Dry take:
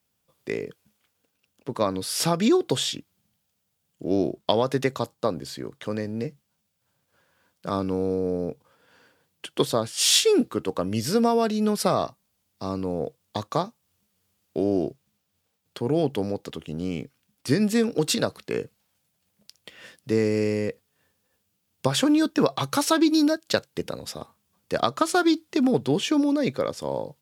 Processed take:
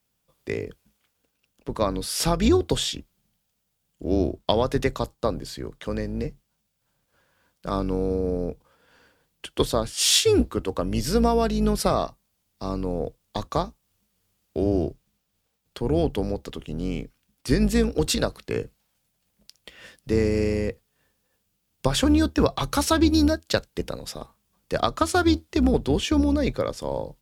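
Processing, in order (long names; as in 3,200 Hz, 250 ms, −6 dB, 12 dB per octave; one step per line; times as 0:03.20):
sub-octave generator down 2 octaves, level −3 dB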